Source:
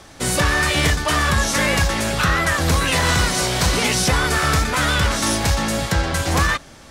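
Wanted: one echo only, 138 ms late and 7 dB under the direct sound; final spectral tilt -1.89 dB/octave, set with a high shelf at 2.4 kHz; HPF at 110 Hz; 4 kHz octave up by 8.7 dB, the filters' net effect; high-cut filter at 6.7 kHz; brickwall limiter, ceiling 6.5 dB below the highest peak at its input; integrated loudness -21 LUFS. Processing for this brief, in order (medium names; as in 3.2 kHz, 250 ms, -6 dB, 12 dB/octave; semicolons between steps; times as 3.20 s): high-pass 110 Hz; low-pass 6.7 kHz; treble shelf 2.4 kHz +5 dB; peaking EQ 4 kHz +7 dB; peak limiter -9 dBFS; delay 138 ms -7 dB; trim -4.5 dB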